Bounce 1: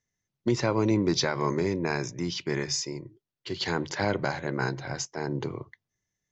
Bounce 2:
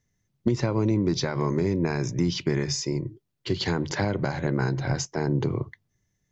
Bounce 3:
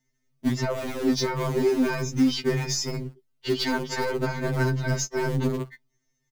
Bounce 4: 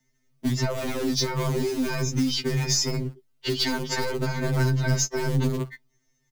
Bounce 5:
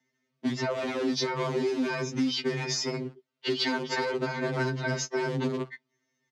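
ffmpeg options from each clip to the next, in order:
ffmpeg -i in.wav -af "acompressor=threshold=-30dB:ratio=6,lowshelf=frequency=320:gain=10.5,volume=4dB" out.wav
ffmpeg -i in.wav -filter_complex "[0:a]aecho=1:1:4.5:0.88,asplit=2[link_01][link_02];[link_02]acrusher=bits=4:dc=4:mix=0:aa=0.000001,volume=-9.5dB[link_03];[link_01][link_03]amix=inputs=2:normalize=0,afftfilt=real='re*2.45*eq(mod(b,6),0)':imag='im*2.45*eq(mod(b,6),0)':win_size=2048:overlap=0.75" out.wav
ffmpeg -i in.wav -filter_complex "[0:a]acrossover=split=160|3000[link_01][link_02][link_03];[link_02]acompressor=threshold=-31dB:ratio=6[link_04];[link_01][link_04][link_03]amix=inputs=3:normalize=0,volume=4.5dB" out.wav
ffmpeg -i in.wav -af "highpass=240,lowpass=4000" out.wav

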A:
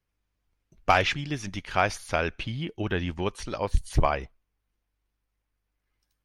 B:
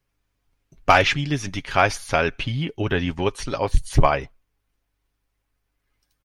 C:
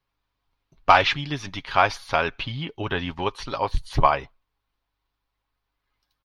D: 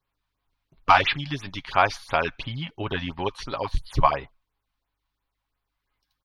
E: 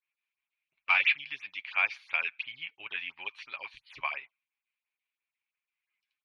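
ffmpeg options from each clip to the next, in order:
ffmpeg -i in.wav -af "aecho=1:1:7.3:0.41,volume=5.5dB" out.wav
ffmpeg -i in.wav -af "equalizer=frequency=1000:width_type=o:width=1:gain=10,equalizer=frequency=4000:width_type=o:width=1:gain=10,equalizer=frequency=8000:width_type=o:width=1:gain=-10,volume=-6.5dB" out.wav
ffmpeg -i in.wav -af "afftfilt=real='re*(1-between(b*sr/1024,350*pow(7600/350,0.5+0.5*sin(2*PI*2.9*pts/sr))/1.41,350*pow(7600/350,0.5+0.5*sin(2*PI*2.9*pts/sr))*1.41))':imag='im*(1-between(b*sr/1024,350*pow(7600/350,0.5+0.5*sin(2*PI*2.9*pts/sr))/1.41,350*pow(7600/350,0.5+0.5*sin(2*PI*2.9*pts/sr))*1.41))':win_size=1024:overlap=0.75,volume=-1dB" out.wav
ffmpeg -i in.wav -af "bandpass=frequency=2400:width_type=q:width=6.8:csg=0,volume=5dB" out.wav

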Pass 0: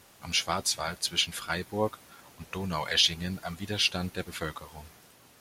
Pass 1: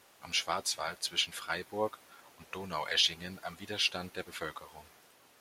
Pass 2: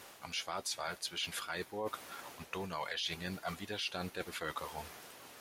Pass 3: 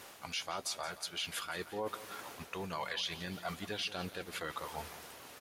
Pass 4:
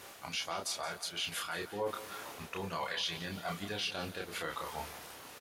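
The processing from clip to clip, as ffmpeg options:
ffmpeg -i in.wav -af "bass=frequency=250:gain=-11,treble=frequency=4000:gain=-3,volume=-3dB" out.wav
ffmpeg -i in.wav -af "alimiter=level_in=1dB:limit=-24dB:level=0:latency=1:release=68,volume=-1dB,areverse,acompressor=threshold=-46dB:ratio=4,areverse,volume=8.5dB" out.wav
ffmpeg -i in.wav -af "alimiter=level_in=4.5dB:limit=-24dB:level=0:latency=1:release=186,volume=-4.5dB,aecho=1:1:173|346|519|692|865:0.178|0.0978|0.0538|0.0296|0.0163,volume=1.5dB" out.wav
ffmpeg -i in.wav -filter_complex "[0:a]asplit=2[link_01][link_02];[link_02]adelay=30,volume=-3dB[link_03];[link_01][link_03]amix=inputs=2:normalize=0" out.wav

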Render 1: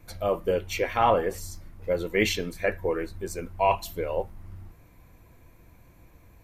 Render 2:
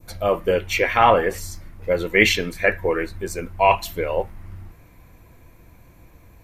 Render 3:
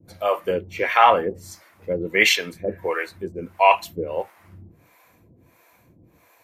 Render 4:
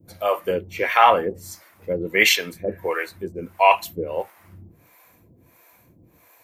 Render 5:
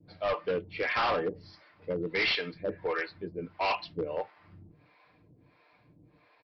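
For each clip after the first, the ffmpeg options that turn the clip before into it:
ffmpeg -i in.wav -af "adynamicequalizer=threshold=0.00794:dfrequency=2000:dqfactor=1:tfrequency=2000:tqfactor=1:attack=5:release=100:ratio=0.375:range=3.5:mode=boostabove:tftype=bell,volume=5dB" out.wav
ffmpeg -i in.wav -filter_complex "[0:a]highpass=130,acrossover=split=490[link_01][link_02];[link_01]aeval=exprs='val(0)*(1-1/2+1/2*cos(2*PI*1.5*n/s))':channel_layout=same[link_03];[link_02]aeval=exprs='val(0)*(1-1/2-1/2*cos(2*PI*1.5*n/s))':channel_layout=same[link_04];[link_03][link_04]amix=inputs=2:normalize=0,volume=2.5dB" out.wav
ffmpeg -i in.wav -af "highshelf=frequency=11000:gain=11" out.wav
ffmpeg -i in.wav -af "aecho=1:1:6.7:0.45,aresample=11025,volume=18.5dB,asoftclip=hard,volume=-18.5dB,aresample=44100,volume=-6.5dB" out.wav

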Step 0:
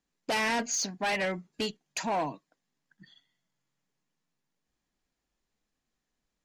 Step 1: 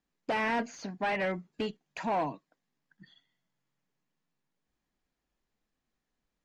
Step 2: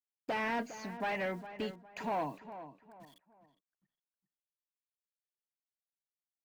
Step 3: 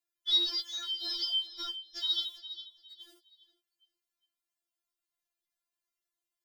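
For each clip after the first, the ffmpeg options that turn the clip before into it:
ffmpeg -i in.wav -filter_complex "[0:a]acrossover=split=2700[link_01][link_02];[link_02]acompressor=threshold=-46dB:ratio=4:attack=1:release=60[link_03];[link_01][link_03]amix=inputs=2:normalize=0,lowpass=frequency=3600:poles=1" out.wav
ffmpeg -i in.wav -filter_complex "[0:a]acrusher=bits=9:mix=0:aa=0.000001,asplit=2[link_01][link_02];[link_02]adelay=408,lowpass=frequency=2100:poles=1,volume=-12dB,asplit=2[link_03][link_04];[link_04]adelay=408,lowpass=frequency=2100:poles=1,volume=0.34,asplit=2[link_05][link_06];[link_06]adelay=408,lowpass=frequency=2100:poles=1,volume=0.34[link_07];[link_01][link_03][link_05][link_07]amix=inputs=4:normalize=0,volume=-4.5dB" out.wav
ffmpeg -i in.wav -af "afftfilt=real='real(if(lt(b,272),68*(eq(floor(b/68),0)*2+eq(floor(b/68),1)*3+eq(floor(b/68),2)*0+eq(floor(b/68),3)*1)+mod(b,68),b),0)':imag='imag(if(lt(b,272),68*(eq(floor(b/68),0)*2+eq(floor(b/68),1)*3+eq(floor(b/68),2)*0+eq(floor(b/68),3)*1)+mod(b,68),b),0)':win_size=2048:overlap=0.75,afftfilt=real='re*4*eq(mod(b,16),0)':imag='im*4*eq(mod(b,16),0)':win_size=2048:overlap=0.75,volume=7.5dB" out.wav

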